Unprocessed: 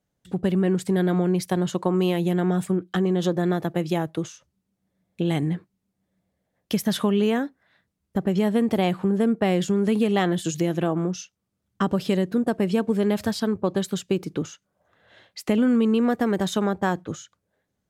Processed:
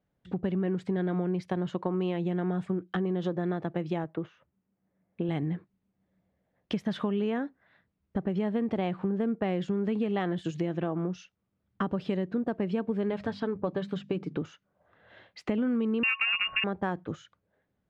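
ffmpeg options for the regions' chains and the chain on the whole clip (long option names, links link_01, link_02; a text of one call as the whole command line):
ffmpeg -i in.wav -filter_complex "[0:a]asettb=1/sr,asplit=3[link_01][link_02][link_03];[link_01]atrim=end=4.044[link_04];[link_02]atrim=start=4.04:end=5.29,asetpts=PTS-STARTPTS,afade=type=in:duration=0.004:curve=qsin,afade=type=out:start_time=1.246:duration=0.004:curve=qsin,lowpass=2300,lowshelf=frequency=100:gain=-9.5[link_05];[link_03]atrim=start=5.286[link_06];[link_04][link_05]acrossfade=duration=0.004:curve1=hsin:curve2=qsin[link_07];[link_07][link_06]acrossfade=duration=0.004:curve1=qsin:curve2=hsin,asettb=1/sr,asplit=3[link_08][link_09][link_10];[link_08]atrim=end=13.094[link_11];[link_09]atrim=start=13.09:end=14.36,asetpts=PTS-STARTPTS,afade=type=in:duration=0.004:curve=qsin,afade=type=out:start_time=1.266:duration=0.004:curve=qsin,acrossover=split=4900[link_12][link_13];[link_13]acompressor=threshold=-46dB:ratio=4:attack=1:release=60[link_14];[link_12][link_14]amix=inputs=2:normalize=0,bandreject=frequency=50:width_type=h:width=6,bandreject=frequency=100:width_type=h:width=6,bandreject=frequency=150:width_type=h:width=6,bandreject=frequency=200:width_type=h:width=6,bandreject=frequency=250:width_type=h:width=6,aecho=1:1:6.9:0.35,atrim=end_sample=56007[link_15];[link_10]atrim=start=14.356[link_16];[link_11][link_15]acrossfade=duration=0.004:curve1=hsin:curve2=qsin[link_17];[link_17][link_16]acrossfade=duration=0.004:curve1=qsin:curve2=hsin,asettb=1/sr,asplit=3[link_18][link_19][link_20];[link_18]atrim=end=16.034[link_21];[link_19]atrim=start=16.03:end=16.64,asetpts=PTS-STARTPTS,afade=type=in:duration=0.004:curve=qsin,afade=type=out:start_time=0.606:duration=0.004:curve=qsin,lowpass=frequency=2600:width_type=q:width=0.5098,lowpass=frequency=2600:width_type=q:width=0.6013,lowpass=frequency=2600:width_type=q:width=0.9,lowpass=frequency=2600:width_type=q:width=2.563,afreqshift=-3000,acontrast=69,aeval=exprs='val(0)+0.0158*sin(2*PI*1100*n/s)':channel_layout=same[link_22];[link_20]atrim=start=16.636[link_23];[link_21][link_22]acrossfade=duration=0.004:curve1=hsin:curve2=qsin[link_24];[link_24][link_23]acrossfade=duration=0.004:curve1=qsin:curve2=hsin,lowpass=2700,acompressor=threshold=-32dB:ratio=2" out.wav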